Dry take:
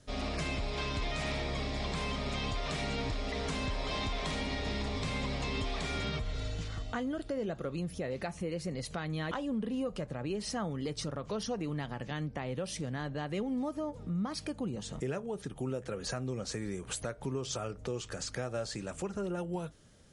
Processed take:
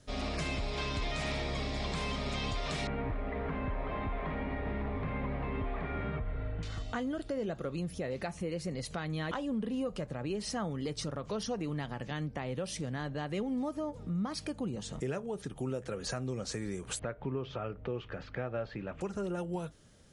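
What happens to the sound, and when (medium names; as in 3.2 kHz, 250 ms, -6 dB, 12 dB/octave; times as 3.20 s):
2.87–6.63 s: low-pass 2 kHz 24 dB/octave
16.99–19.01 s: low-pass 2.9 kHz 24 dB/octave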